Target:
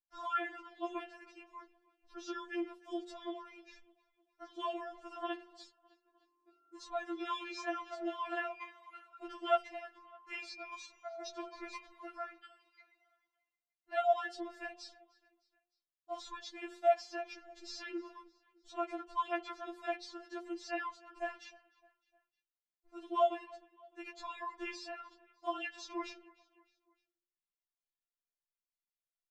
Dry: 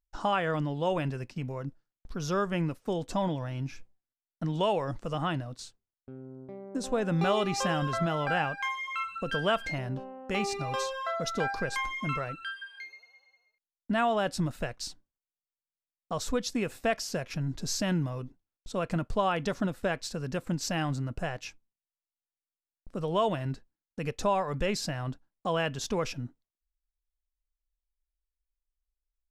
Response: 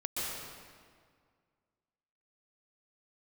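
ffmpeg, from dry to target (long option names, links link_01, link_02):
-filter_complex "[0:a]acrossover=split=250 6900:gain=0.0708 1 0.158[link_01][link_02][link_03];[link_01][link_02][link_03]amix=inputs=3:normalize=0,bandreject=frequency=88.33:width_type=h:width=4,bandreject=frequency=176.66:width_type=h:width=4,bandreject=frequency=264.99:width_type=h:width=4,bandreject=frequency=353.32:width_type=h:width=4,bandreject=frequency=441.65:width_type=h:width=4,bandreject=frequency=529.98:width_type=h:width=4,bandreject=frequency=618.31:width_type=h:width=4,bandreject=frequency=706.64:width_type=h:width=4,bandreject=frequency=794.97:width_type=h:width=4,bandreject=frequency=883.3:width_type=h:width=4,bandreject=frequency=971.63:width_type=h:width=4,bandreject=frequency=1059.96:width_type=h:width=4,bandreject=frequency=1148.29:width_type=h:width=4,bandreject=frequency=1236.62:width_type=h:width=4,bandreject=frequency=1324.95:width_type=h:width=4,bandreject=frequency=1413.28:width_type=h:width=4,bandreject=frequency=1501.61:width_type=h:width=4,bandreject=frequency=1589.94:width_type=h:width=4,bandreject=frequency=1678.27:width_type=h:width=4,bandreject=frequency=1766.6:width_type=h:width=4,bandreject=frequency=1854.93:width_type=h:width=4,bandreject=frequency=1943.26:width_type=h:width=4,bandreject=frequency=2031.59:width_type=h:width=4,bandreject=frequency=2119.92:width_type=h:width=4,bandreject=frequency=2208.25:width_type=h:width=4,bandreject=frequency=2296.58:width_type=h:width=4,bandreject=frequency=2384.91:width_type=h:width=4,bandreject=frequency=2473.24:width_type=h:width=4,bandreject=frequency=2561.57:width_type=h:width=4,bandreject=frequency=2649.9:width_type=h:width=4,bandreject=frequency=2738.23:width_type=h:width=4,bandreject=frequency=2826.56:width_type=h:width=4,bandreject=frequency=2914.89:width_type=h:width=4,bandreject=frequency=3003.22:width_type=h:width=4,bandreject=frequency=3091.55:width_type=h:width=4,bandreject=frequency=3179.88:width_type=h:width=4,acrossover=split=5500[link_04][link_05];[link_04]aecho=1:1:305|610|915:0.0708|0.0347|0.017[link_06];[link_05]acompressor=threshold=-60dB:ratio=6[link_07];[link_06][link_07]amix=inputs=2:normalize=0,afftfilt=real='re*4*eq(mod(b,16),0)':imag='im*4*eq(mod(b,16),0)':win_size=2048:overlap=0.75,volume=-4.5dB"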